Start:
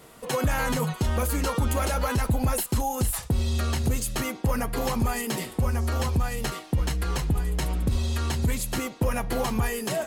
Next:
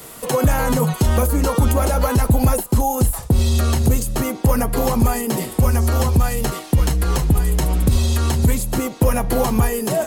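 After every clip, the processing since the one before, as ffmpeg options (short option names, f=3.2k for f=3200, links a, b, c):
-filter_complex "[0:a]highshelf=f=6.3k:g=11.5,acrossover=split=360|1100[a][b][c];[c]acompressor=threshold=-36dB:ratio=6[d];[a][b][d]amix=inputs=3:normalize=0,volume=9dB"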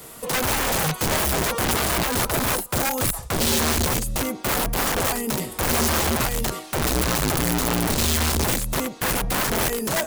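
-af "aeval=exprs='(mod(5.01*val(0)+1,2)-1)/5.01':c=same,volume=-3.5dB"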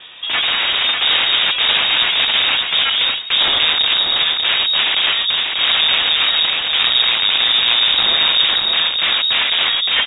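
-filter_complex "[0:a]asplit=2[a][b];[b]aecho=0:1:590|1180|1770:0.631|0.101|0.0162[c];[a][c]amix=inputs=2:normalize=0,lowpass=f=3.2k:t=q:w=0.5098,lowpass=f=3.2k:t=q:w=0.6013,lowpass=f=3.2k:t=q:w=0.9,lowpass=f=3.2k:t=q:w=2.563,afreqshift=-3800,volume=7dB"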